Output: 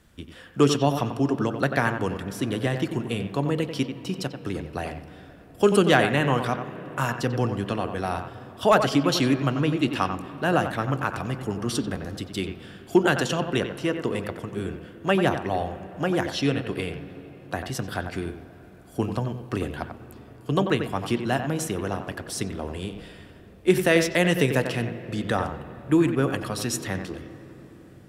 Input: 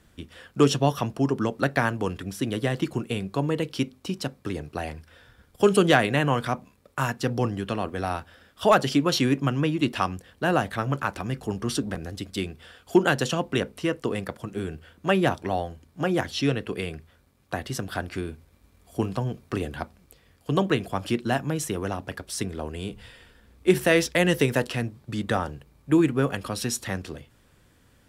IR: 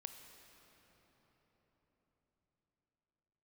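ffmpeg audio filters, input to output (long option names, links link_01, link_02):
-filter_complex "[0:a]asplit=2[link_01][link_02];[1:a]atrim=start_sample=2205,lowpass=3100,adelay=91[link_03];[link_02][link_03]afir=irnorm=-1:irlink=0,volume=-2.5dB[link_04];[link_01][link_04]amix=inputs=2:normalize=0"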